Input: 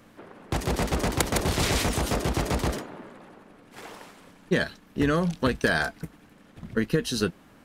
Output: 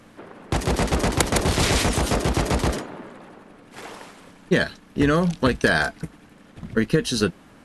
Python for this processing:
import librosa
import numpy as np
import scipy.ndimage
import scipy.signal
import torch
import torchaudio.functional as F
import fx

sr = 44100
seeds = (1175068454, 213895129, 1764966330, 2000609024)

y = fx.brickwall_lowpass(x, sr, high_hz=12000.0)
y = F.gain(torch.from_numpy(y), 4.5).numpy()